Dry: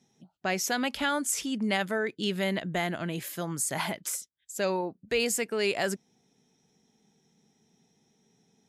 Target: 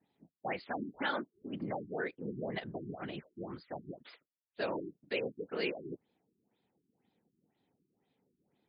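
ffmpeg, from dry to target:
-af "afftfilt=real='hypot(re,im)*cos(2*PI*random(0))':imag='hypot(re,im)*sin(2*PI*random(1))':win_size=512:overlap=0.75,highpass=f=250:p=1,afftfilt=real='re*lt(b*sr/1024,390*pow(5100/390,0.5+0.5*sin(2*PI*2*pts/sr)))':imag='im*lt(b*sr/1024,390*pow(5100/390,0.5+0.5*sin(2*PI*2*pts/sr)))':win_size=1024:overlap=0.75"

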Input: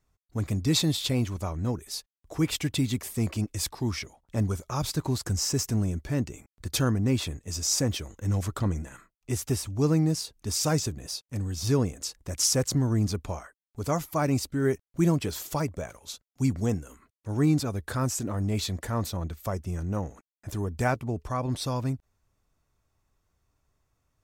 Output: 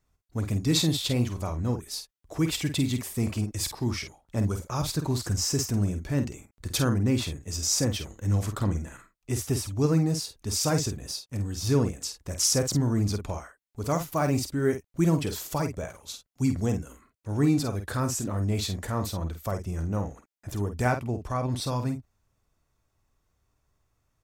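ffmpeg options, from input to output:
-filter_complex "[0:a]asettb=1/sr,asplit=3[s0][s1][s2];[s0]atrim=end=13.924[s3];[s1]atrim=start=13.92:end=14.38,asetpts=PTS-STARTPTS,afade=t=in:d=0.004:c=qsin,afade=t=out:st=0.456:d=0.004:c=qsin,acrusher=bits=9:dc=4:mix=0:aa=0.000001[s4];[s2]atrim=start=14.376[s5];[s3][s4]acrossfade=d=0.004:c1=hsin:c2=qsin[s6];[s6][s5]acrossfade=d=0.004:c1=qsin:c2=hsin,asplit=2[s7][s8];[s8]adelay=49,volume=0.398[s9];[s7][s9]amix=inputs=2:normalize=0"

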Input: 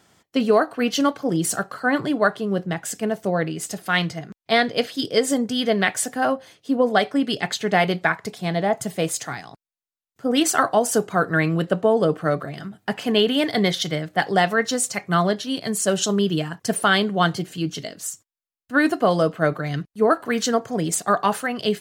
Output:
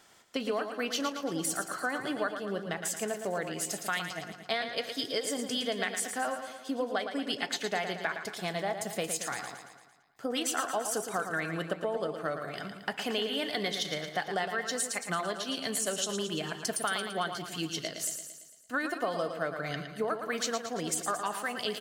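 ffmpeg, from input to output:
-filter_complex "[0:a]equalizer=f=120:w=0.38:g=-11.5,acompressor=threshold=0.0282:ratio=4,asplit=2[s0][s1];[s1]aecho=0:1:113|226|339|452|565|678|791:0.398|0.223|0.125|0.0699|0.0392|0.0219|0.0123[s2];[s0][s2]amix=inputs=2:normalize=0"

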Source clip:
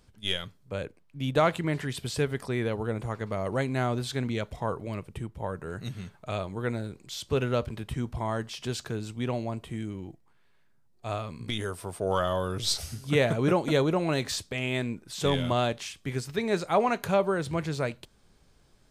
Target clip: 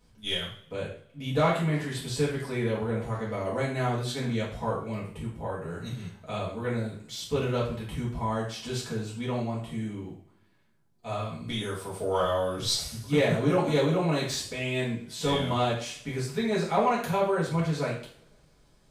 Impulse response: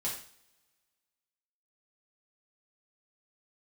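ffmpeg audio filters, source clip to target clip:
-filter_complex "[1:a]atrim=start_sample=2205[s0];[0:a][s0]afir=irnorm=-1:irlink=0,asoftclip=type=tanh:threshold=0.316,volume=0.75"

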